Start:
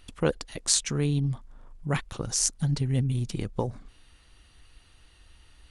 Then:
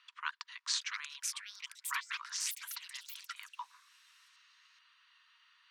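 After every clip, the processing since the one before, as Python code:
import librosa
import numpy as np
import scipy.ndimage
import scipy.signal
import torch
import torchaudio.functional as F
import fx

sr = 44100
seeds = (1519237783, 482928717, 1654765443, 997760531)

y = scipy.signal.sosfilt(scipy.signal.cheby1(8, 1.0, 960.0, 'highpass', fs=sr, output='sos'), x)
y = fx.air_absorb(y, sr, metres=180.0)
y = fx.echo_pitch(y, sr, ms=755, semitones=6, count=3, db_per_echo=-3.0)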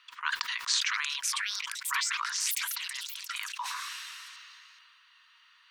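y = fx.sustainer(x, sr, db_per_s=20.0)
y = F.gain(torch.from_numpy(y), 5.5).numpy()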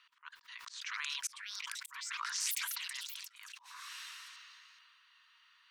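y = fx.auto_swell(x, sr, attack_ms=437.0)
y = F.gain(torch.from_numpy(y), -5.0).numpy()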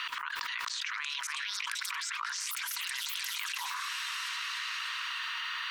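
y = fx.bass_treble(x, sr, bass_db=-3, treble_db=-5)
y = fx.echo_feedback(y, sr, ms=301, feedback_pct=40, wet_db=-11.5)
y = fx.env_flatten(y, sr, amount_pct=100)
y = F.gain(torch.from_numpy(y), 1.0).numpy()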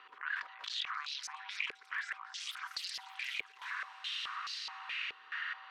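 y = x + 10.0 ** (-58.0 / 20.0) * np.sin(2.0 * np.pi * 770.0 * np.arange(len(x)) / sr)
y = y + 10.0 ** (-9.0 / 20.0) * np.pad(y, (int(269 * sr / 1000.0), 0))[:len(y)]
y = fx.filter_held_bandpass(y, sr, hz=4.7, low_hz=430.0, high_hz=4700.0)
y = F.gain(torch.from_numpy(y), 3.5).numpy()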